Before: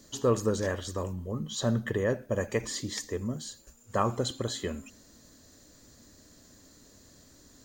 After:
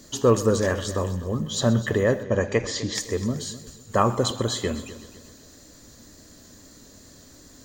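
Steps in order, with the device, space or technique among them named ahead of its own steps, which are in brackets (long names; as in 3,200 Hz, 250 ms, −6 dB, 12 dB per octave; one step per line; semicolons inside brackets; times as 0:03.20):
multi-head tape echo (echo machine with several playback heads 127 ms, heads first and second, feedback 45%, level −17.5 dB; tape wow and flutter 20 cents)
0:02.23–0:02.95: low-pass filter 6,500 Hz 24 dB per octave
level +7 dB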